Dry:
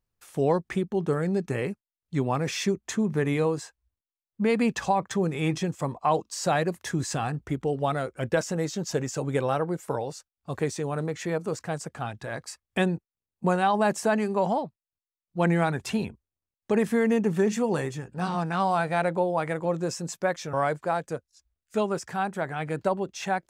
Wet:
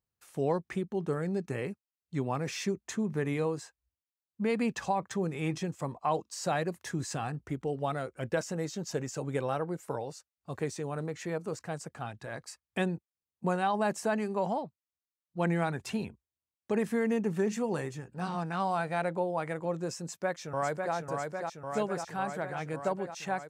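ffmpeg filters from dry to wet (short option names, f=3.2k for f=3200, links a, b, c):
-filter_complex "[0:a]asplit=2[a][b];[b]afade=t=in:st=20.06:d=0.01,afade=t=out:st=20.94:d=0.01,aecho=0:1:550|1100|1650|2200|2750|3300|3850|4400|4950|5500|6050|6600:0.630957|0.473218|0.354914|0.266185|0.199639|0.149729|0.112297|0.0842226|0.063167|0.0473752|0.0355314|0.0266486[c];[a][c]amix=inputs=2:normalize=0,highpass=56,bandreject=f=3.4k:w=25,volume=-6dB"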